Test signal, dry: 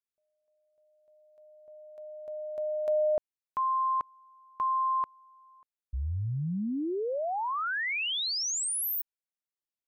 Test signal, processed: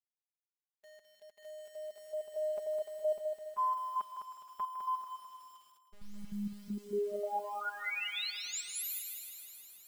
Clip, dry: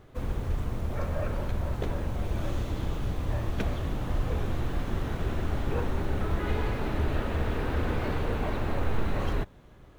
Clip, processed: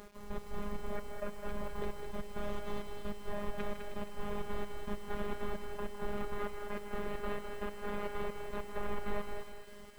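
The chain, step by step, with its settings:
low-pass filter 1,400 Hz 6 dB per octave
low-shelf EQ 380 Hz −8.5 dB
in parallel at +0.5 dB: downward compressor 12 to 1, threshold −45 dBFS
on the sum: brickwall limiter −26.5 dBFS
speech leveller within 4 dB 0.5 s
gate pattern "x...x..xxx.x" 197 BPM −12 dB
bit reduction 10 bits
phases set to zero 205 Hz
on a send: feedback echo with a high-pass in the loop 157 ms, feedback 77%, high-pass 920 Hz, level −9 dB
on the sum: feedback echo at a low word length 207 ms, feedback 35%, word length 10 bits, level −6.5 dB
level +1.5 dB

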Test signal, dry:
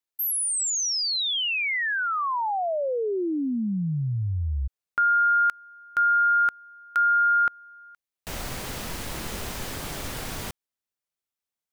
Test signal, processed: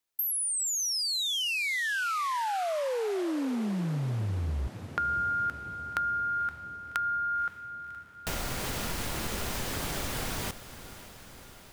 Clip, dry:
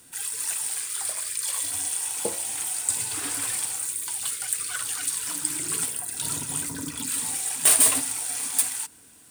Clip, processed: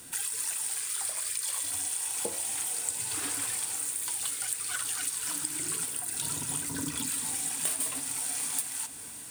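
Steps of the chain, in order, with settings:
downward compressor 6 to 1, threshold −35 dBFS
feedback delay with all-pass diffusion 545 ms, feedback 68%, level −14.5 dB
level +5 dB

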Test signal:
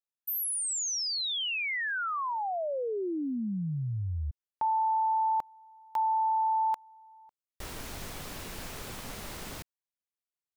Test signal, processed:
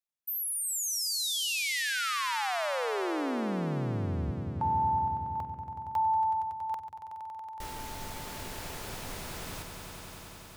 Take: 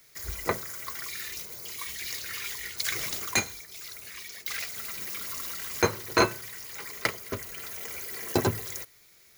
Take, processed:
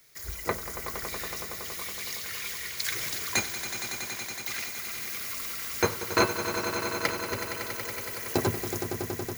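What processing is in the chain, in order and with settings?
echo that builds up and dies away 93 ms, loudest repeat 5, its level −11 dB
level −1.5 dB

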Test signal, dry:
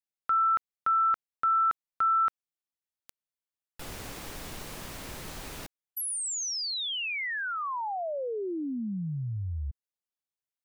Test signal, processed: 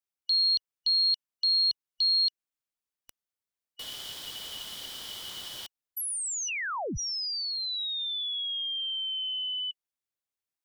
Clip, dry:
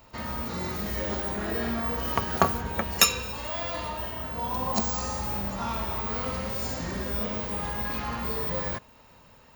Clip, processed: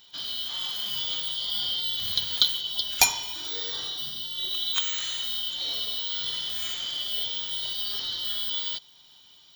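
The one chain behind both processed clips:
band-splitting scrambler in four parts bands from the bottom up 3412

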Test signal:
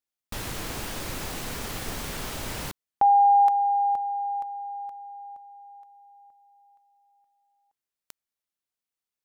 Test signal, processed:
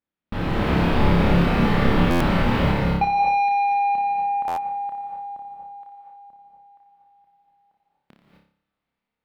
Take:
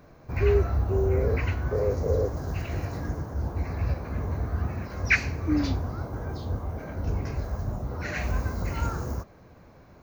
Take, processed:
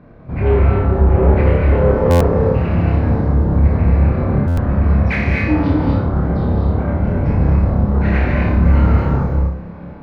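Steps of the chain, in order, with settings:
parametric band 200 Hz +7.5 dB 0.94 octaves
automatic gain control gain up to 6 dB
in parallel at −9 dB: floating-point word with a short mantissa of 2 bits
on the sum: soft clipping −17.5 dBFS
high-frequency loss of the air 420 metres
on a send: flutter between parallel walls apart 5 metres, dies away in 0.51 s
on the sum: reverb whose tail is shaped and stops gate 280 ms rising, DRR 0 dB
buffer that repeats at 0:02.10/0:04.47, samples 512, times 8
level +3 dB

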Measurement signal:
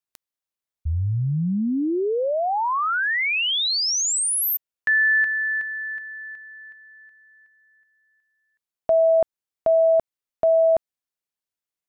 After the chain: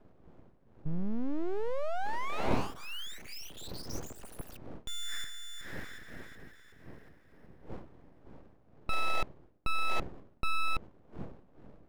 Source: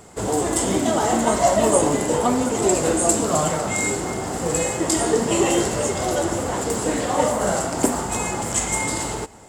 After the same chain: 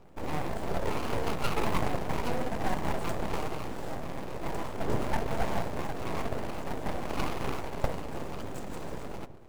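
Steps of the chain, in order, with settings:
running median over 41 samples
wind on the microphone 240 Hz −37 dBFS
full-wave rectification
level −5.5 dB

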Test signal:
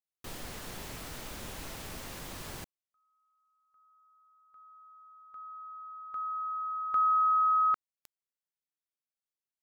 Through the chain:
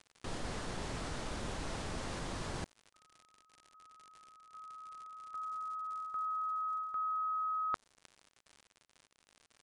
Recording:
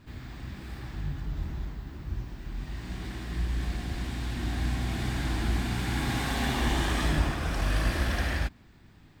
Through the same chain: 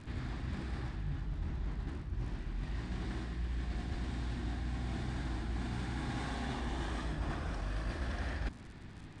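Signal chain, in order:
high-shelf EQ 6,600 Hz −11 dB
surface crackle 110 per second −50 dBFS
reversed playback
downward compressor 8 to 1, threshold −40 dBFS
reversed playback
dynamic equaliser 2,500 Hz, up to −4 dB, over −59 dBFS, Q 1.3
downsampling to 22,050 Hz
level +5.5 dB

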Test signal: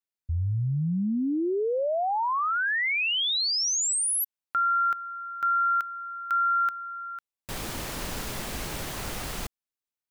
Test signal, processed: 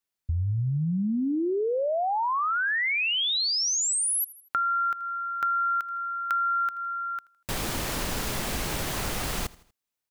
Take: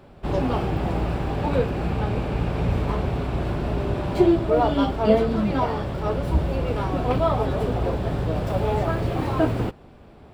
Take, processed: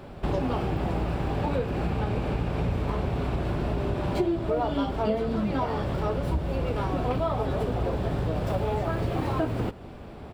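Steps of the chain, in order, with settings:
repeating echo 80 ms, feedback 44%, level −22.5 dB
downward compressor 4 to 1, threshold −31 dBFS
level +5.5 dB

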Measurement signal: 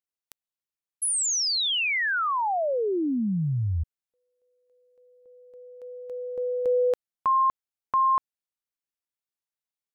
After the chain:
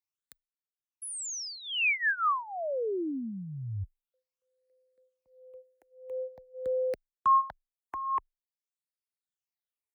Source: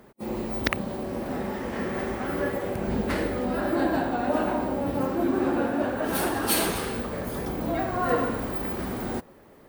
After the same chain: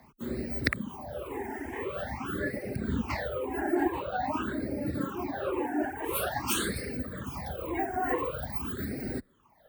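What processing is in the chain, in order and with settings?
all-pass phaser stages 8, 0.47 Hz, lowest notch 150–1,000 Hz
reverb reduction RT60 1.2 s
frequency shifter +17 Hz

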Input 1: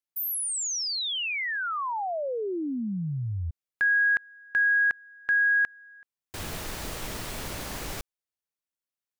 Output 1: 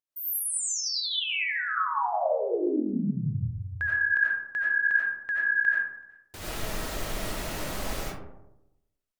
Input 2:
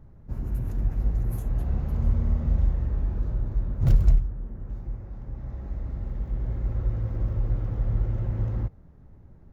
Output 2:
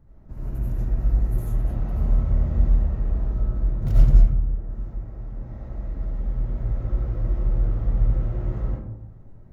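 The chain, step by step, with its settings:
pitch vibrato 11 Hz 45 cents
comb and all-pass reverb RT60 0.92 s, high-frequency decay 0.35×, pre-delay 50 ms, DRR −7 dB
level −5.5 dB

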